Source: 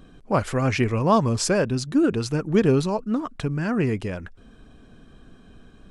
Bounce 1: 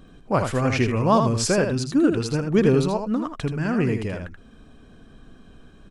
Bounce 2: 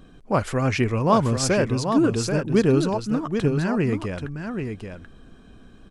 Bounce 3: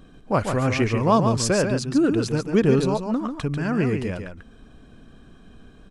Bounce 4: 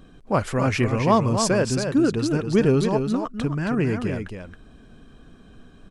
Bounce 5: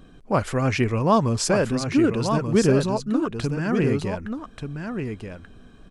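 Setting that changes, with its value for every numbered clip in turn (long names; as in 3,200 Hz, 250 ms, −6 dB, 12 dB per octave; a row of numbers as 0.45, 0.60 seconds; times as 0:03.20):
single-tap delay, delay time: 80, 783, 142, 272, 1,184 milliseconds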